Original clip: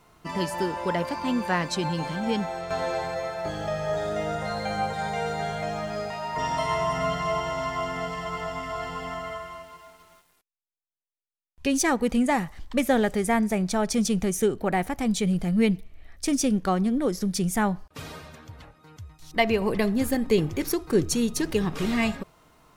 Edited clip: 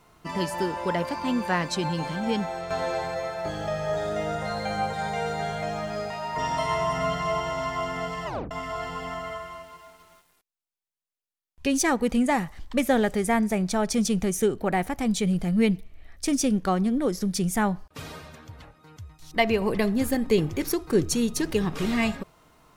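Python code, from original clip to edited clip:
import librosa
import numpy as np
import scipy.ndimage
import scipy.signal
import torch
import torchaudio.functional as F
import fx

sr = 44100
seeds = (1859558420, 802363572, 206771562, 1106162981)

y = fx.edit(x, sr, fx.tape_stop(start_s=8.26, length_s=0.25), tone=tone)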